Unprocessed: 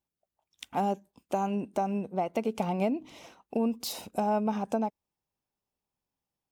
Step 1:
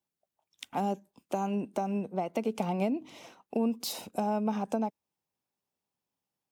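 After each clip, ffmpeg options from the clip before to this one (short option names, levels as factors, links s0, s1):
-filter_complex "[0:a]highpass=110,acrossover=split=350|3000[s0][s1][s2];[s1]acompressor=threshold=0.0355:ratio=6[s3];[s0][s3][s2]amix=inputs=3:normalize=0"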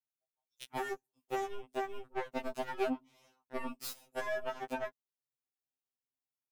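-af "highshelf=f=9900:g=9,aeval=exprs='0.15*(cos(1*acos(clip(val(0)/0.15,-1,1)))-cos(1*PI/2))+0.0168*(cos(2*acos(clip(val(0)/0.15,-1,1)))-cos(2*PI/2))+0.0266*(cos(7*acos(clip(val(0)/0.15,-1,1)))-cos(7*PI/2))':c=same,afftfilt=real='re*2.45*eq(mod(b,6),0)':imag='im*2.45*eq(mod(b,6),0)':win_size=2048:overlap=0.75,volume=0.794"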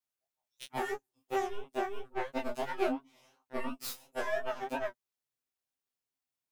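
-af "flanger=delay=18:depth=7.8:speed=2.9,volume=1.88"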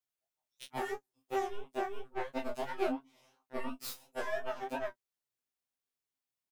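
-filter_complex "[0:a]asplit=2[s0][s1];[s1]adelay=23,volume=0.211[s2];[s0][s2]amix=inputs=2:normalize=0,volume=0.75"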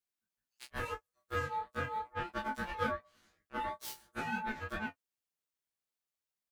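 -af "aeval=exprs='val(0)*sin(2*PI*870*n/s)':c=same,volume=1.12"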